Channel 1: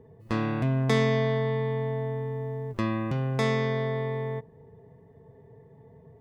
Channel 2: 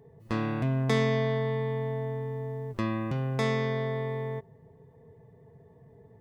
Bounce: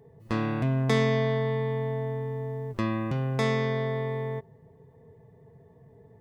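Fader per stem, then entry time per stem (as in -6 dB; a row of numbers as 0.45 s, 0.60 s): -18.0 dB, +0.5 dB; 0.00 s, 0.00 s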